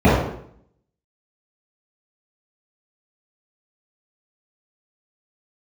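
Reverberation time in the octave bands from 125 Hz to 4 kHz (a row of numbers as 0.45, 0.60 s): 0.75, 0.75, 0.70, 0.65, 0.60, 0.50 s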